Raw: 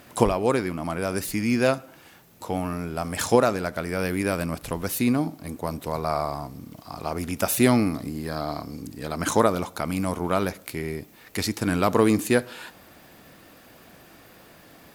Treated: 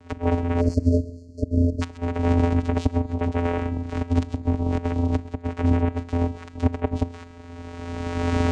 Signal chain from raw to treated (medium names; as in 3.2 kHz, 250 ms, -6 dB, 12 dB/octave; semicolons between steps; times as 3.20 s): octave divider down 2 oct, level +3 dB; recorder AGC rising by 13 dB/s; in parallel at -8 dB: saturation -14 dBFS, distortion -13 dB; on the sum: inverted gate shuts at -4 dBFS, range -40 dB; simulated room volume 870 m³, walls mixed, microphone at 0.3 m; granular stretch 0.57×, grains 42 ms; vocoder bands 4, square 86 Hz; spectral selection erased 0.61–1.82 s, 700–4200 Hz; on a send: thinning echo 131 ms, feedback 27%, high-pass 1 kHz, level -16 dB